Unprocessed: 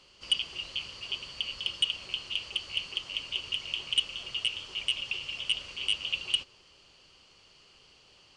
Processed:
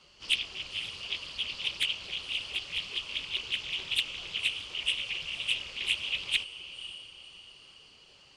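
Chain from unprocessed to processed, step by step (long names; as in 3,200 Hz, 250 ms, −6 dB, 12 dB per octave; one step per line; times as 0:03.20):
random phases in long frames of 50 ms
feedback delay with all-pass diffusion 529 ms, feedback 40%, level −11.5 dB
highs frequency-modulated by the lows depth 0.4 ms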